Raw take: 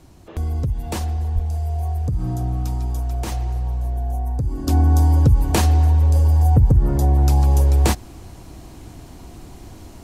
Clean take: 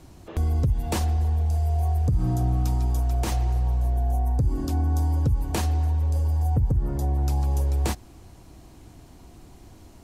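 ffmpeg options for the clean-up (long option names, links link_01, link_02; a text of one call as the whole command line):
ffmpeg -i in.wav -filter_complex "[0:a]asplit=3[link_01][link_02][link_03];[link_01]afade=type=out:start_time=1.34:duration=0.02[link_04];[link_02]highpass=frequency=140:width=0.5412,highpass=frequency=140:width=1.3066,afade=type=in:start_time=1.34:duration=0.02,afade=type=out:start_time=1.46:duration=0.02[link_05];[link_03]afade=type=in:start_time=1.46:duration=0.02[link_06];[link_04][link_05][link_06]amix=inputs=3:normalize=0,asetnsamples=nb_out_samples=441:pad=0,asendcmd='4.67 volume volume -8.5dB',volume=0dB" out.wav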